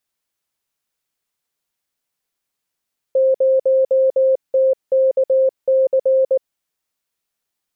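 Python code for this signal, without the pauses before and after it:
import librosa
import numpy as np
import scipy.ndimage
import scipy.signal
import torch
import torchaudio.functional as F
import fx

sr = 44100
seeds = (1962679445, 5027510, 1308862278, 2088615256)

y = fx.morse(sr, text='0TKC', wpm=19, hz=528.0, level_db=-11.0)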